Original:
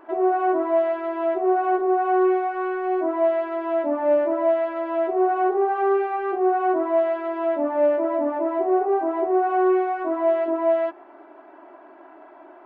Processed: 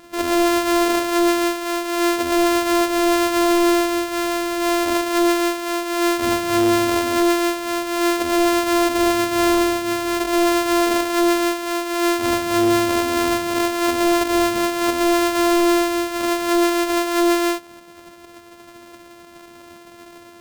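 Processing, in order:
samples sorted by size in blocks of 128 samples
tempo change 0.62×
wave folding −15 dBFS
level +3.5 dB

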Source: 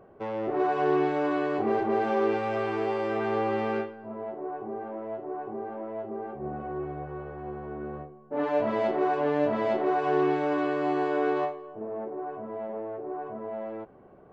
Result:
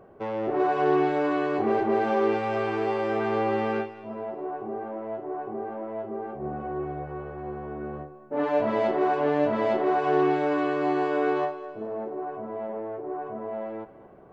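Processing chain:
feedback echo with a high-pass in the loop 210 ms, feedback 49%, level −15 dB
level +2 dB

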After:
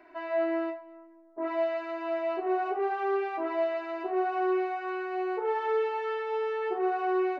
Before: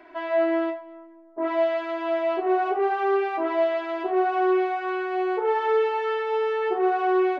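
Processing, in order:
notch filter 3,300 Hz, Q 9.2
level −6 dB

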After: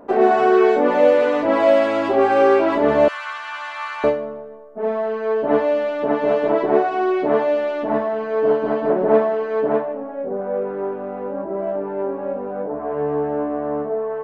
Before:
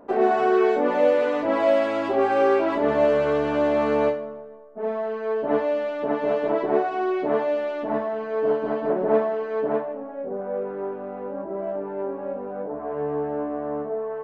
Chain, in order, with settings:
0:03.08–0:04.04: inverse Chebyshev high-pass filter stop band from 520 Hz, stop band 40 dB
level +5 dB

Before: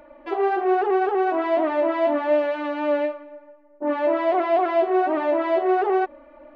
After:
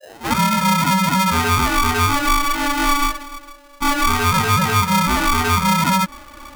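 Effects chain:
turntable start at the beginning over 0.38 s
downward compressor 3 to 1, threshold −23 dBFS, peak gain reduction 6.5 dB
ring modulator with a square carrier 570 Hz
level +8.5 dB

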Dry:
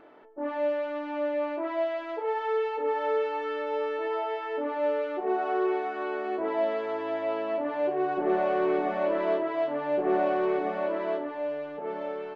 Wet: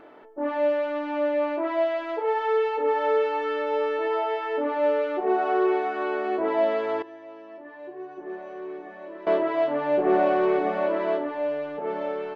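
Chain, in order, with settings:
0:07.02–0:09.27: tuned comb filter 350 Hz, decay 0.29 s, harmonics odd, mix 90%
level +4.5 dB

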